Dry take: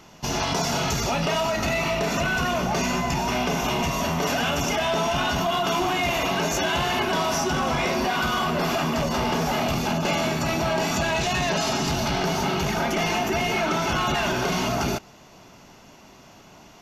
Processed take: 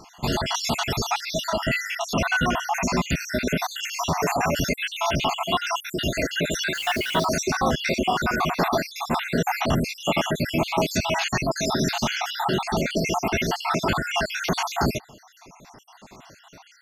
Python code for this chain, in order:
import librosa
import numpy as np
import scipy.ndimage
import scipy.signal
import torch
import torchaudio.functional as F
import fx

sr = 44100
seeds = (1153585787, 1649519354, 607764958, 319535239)

y = fx.spec_dropout(x, sr, seeds[0], share_pct=65)
y = fx.quant_dither(y, sr, seeds[1], bits=8, dither='triangular', at=(6.73, 7.24), fade=0.02)
y = F.gain(torch.from_numpy(y), 4.5).numpy()